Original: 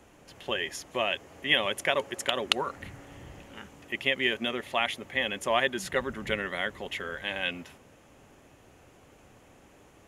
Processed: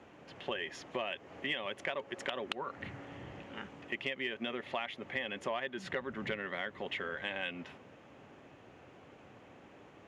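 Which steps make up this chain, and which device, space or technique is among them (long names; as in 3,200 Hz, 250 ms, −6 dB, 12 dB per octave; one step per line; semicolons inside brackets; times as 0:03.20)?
AM radio (band-pass filter 110–3,400 Hz; downward compressor 5 to 1, threshold −35 dBFS, peak gain reduction 14.5 dB; soft clipping −19 dBFS, distortion −28 dB)
level +1 dB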